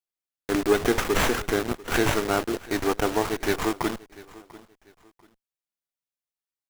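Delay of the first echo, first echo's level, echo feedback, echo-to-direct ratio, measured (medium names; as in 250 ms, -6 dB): 693 ms, -20.5 dB, 30%, -20.0 dB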